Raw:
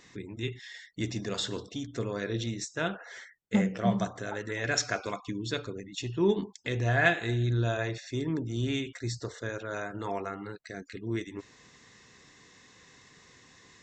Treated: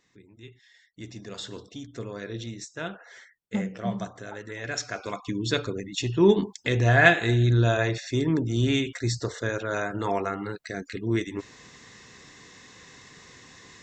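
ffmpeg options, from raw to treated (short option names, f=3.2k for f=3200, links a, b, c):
-af "volume=7dB,afade=t=in:st=0.74:d=0.95:silence=0.334965,afade=t=in:st=4.92:d=0.58:silence=0.316228"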